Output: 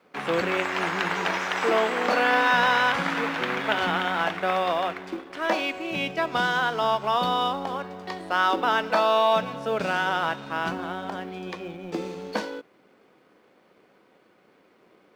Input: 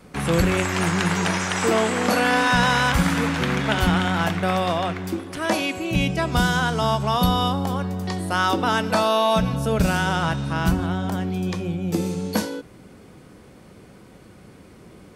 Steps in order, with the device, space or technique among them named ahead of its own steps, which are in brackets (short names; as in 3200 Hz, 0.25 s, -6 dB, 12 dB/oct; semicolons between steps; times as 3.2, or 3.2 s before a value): phone line with mismatched companding (BPF 380–3500 Hz; G.711 law mismatch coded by A)